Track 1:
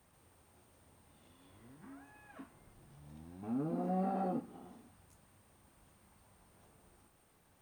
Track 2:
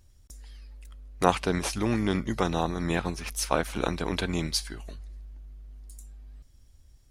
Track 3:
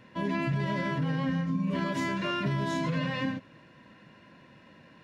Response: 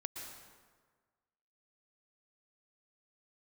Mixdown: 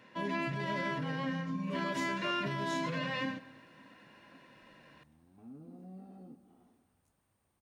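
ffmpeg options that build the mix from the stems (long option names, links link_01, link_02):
-filter_complex "[0:a]acrossover=split=360|3000[link_01][link_02][link_03];[link_02]acompressor=threshold=-53dB:ratio=4[link_04];[link_01][link_04][link_03]amix=inputs=3:normalize=0,adelay=1950,volume=-14.5dB,asplit=2[link_05][link_06];[link_06]volume=-6.5dB[link_07];[2:a]highpass=frequency=350:poles=1,volume=-2.5dB,asplit=2[link_08][link_09];[link_09]volume=-14.5dB[link_10];[3:a]atrim=start_sample=2205[link_11];[link_07][link_10]amix=inputs=2:normalize=0[link_12];[link_12][link_11]afir=irnorm=-1:irlink=0[link_13];[link_05][link_08][link_13]amix=inputs=3:normalize=0"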